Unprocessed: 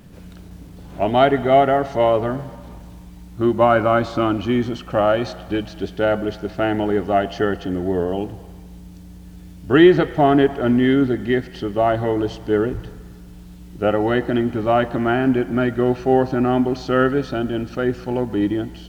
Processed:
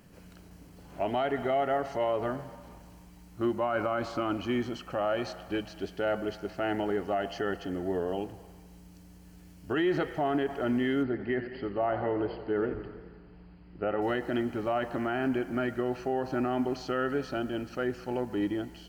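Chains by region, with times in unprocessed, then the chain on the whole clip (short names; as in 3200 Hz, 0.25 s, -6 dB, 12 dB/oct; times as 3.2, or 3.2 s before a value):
11.03–14.02 brick-wall FIR low-pass 5000 Hz + bell 3700 Hz -13.5 dB 0.56 oct + warbling echo 88 ms, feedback 64%, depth 124 cents, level -13 dB
whole clip: low shelf 280 Hz -8 dB; notch 3600 Hz, Q 6.2; limiter -13.5 dBFS; gain -6.5 dB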